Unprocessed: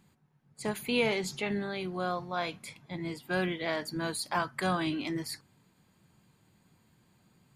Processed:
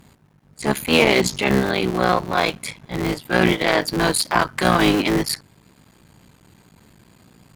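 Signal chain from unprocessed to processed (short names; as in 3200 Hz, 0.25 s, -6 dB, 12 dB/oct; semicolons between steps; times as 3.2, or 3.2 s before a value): cycle switcher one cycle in 3, muted; vibrato 0.58 Hz 20 cents; transient shaper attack -8 dB, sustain -4 dB; added harmonics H 3 -18 dB, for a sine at -18.5 dBFS; maximiser +22.5 dB; gain -1 dB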